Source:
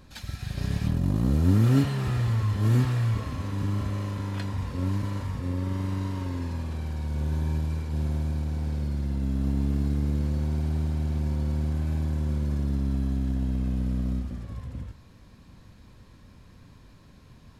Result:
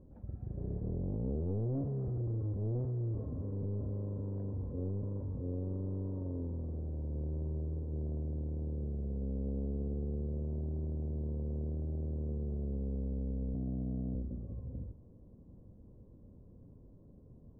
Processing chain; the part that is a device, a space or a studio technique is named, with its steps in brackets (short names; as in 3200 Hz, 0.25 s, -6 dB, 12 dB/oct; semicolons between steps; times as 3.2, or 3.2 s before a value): 13.54–14.15 HPF 70 Hz 24 dB/oct; overdriven synthesiser ladder filter (soft clip -28 dBFS, distortion -8 dB; ladder low-pass 600 Hz, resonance 35%); gain +2.5 dB